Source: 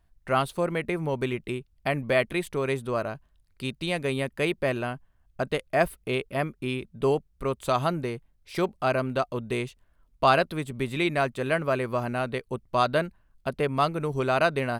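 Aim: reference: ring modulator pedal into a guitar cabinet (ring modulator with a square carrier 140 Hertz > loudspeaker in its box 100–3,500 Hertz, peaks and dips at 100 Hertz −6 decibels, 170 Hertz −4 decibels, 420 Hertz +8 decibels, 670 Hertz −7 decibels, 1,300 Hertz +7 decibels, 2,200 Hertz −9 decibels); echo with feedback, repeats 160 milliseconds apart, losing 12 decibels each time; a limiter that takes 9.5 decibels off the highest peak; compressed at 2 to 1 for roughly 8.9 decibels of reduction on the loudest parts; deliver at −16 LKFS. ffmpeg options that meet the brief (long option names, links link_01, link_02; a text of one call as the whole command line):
ffmpeg -i in.wav -af "acompressor=threshold=-32dB:ratio=2,alimiter=level_in=1.5dB:limit=-24dB:level=0:latency=1,volume=-1.5dB,aecho=1:1:160|320|480:0.251|0.0628|0.0157,aeval=exprs='val(0)*sgn(sin(2*PI*140*n/s))':channel_layout=same,highpass=100,equalizer=frequency=100:width_type=q:width=4:gain=-6,equalizer=frequency=170:width_type=q:width=4:gain=-4,equalizer=frequency=420:width_type=q:width=4:gain=8,equalizer=frequency=670:width_type=q:width=4:gain=-7,equalizer=frequency=1300:width_type=q:width=4:gain=7,equalizer=frequency=2200:width_type=q:width=4:gain=-9,lowpass=frequency=3500:width=0.5412,lowpass=frequency=3500:width=1.3066,volume=20.5dB" out.wav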